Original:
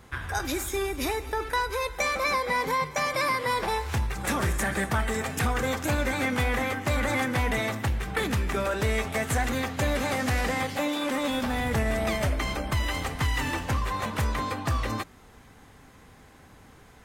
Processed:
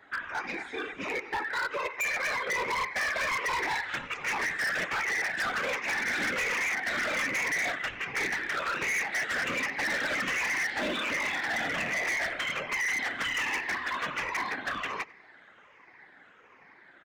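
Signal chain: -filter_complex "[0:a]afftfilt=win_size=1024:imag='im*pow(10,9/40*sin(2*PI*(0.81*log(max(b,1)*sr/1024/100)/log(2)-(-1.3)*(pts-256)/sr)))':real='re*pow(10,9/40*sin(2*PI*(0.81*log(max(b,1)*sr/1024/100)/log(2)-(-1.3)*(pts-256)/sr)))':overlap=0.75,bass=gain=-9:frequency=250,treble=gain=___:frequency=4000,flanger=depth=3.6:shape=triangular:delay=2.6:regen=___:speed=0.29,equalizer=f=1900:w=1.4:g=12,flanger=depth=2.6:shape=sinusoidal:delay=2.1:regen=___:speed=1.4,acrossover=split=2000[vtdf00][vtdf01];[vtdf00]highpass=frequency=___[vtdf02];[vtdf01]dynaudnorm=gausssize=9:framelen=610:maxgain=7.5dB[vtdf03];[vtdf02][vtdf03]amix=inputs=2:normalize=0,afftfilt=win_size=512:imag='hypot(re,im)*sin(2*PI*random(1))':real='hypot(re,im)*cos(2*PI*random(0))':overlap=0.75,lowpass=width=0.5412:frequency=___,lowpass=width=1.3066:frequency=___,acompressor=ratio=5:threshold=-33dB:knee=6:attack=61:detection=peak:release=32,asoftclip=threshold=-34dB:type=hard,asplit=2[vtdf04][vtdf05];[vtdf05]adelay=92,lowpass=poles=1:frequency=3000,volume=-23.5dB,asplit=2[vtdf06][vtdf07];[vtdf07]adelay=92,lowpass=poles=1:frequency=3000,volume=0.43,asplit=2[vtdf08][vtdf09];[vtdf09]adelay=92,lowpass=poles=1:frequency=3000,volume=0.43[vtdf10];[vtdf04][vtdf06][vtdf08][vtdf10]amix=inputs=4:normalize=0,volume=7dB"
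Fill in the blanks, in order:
-14, -18, -37, 160, 7000, 7000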